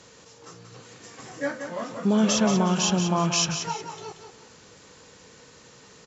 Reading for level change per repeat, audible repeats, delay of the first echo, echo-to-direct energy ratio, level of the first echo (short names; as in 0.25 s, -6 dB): -10.0 dB, 3, 0.181 s, -7.5 dB, -8.0 dB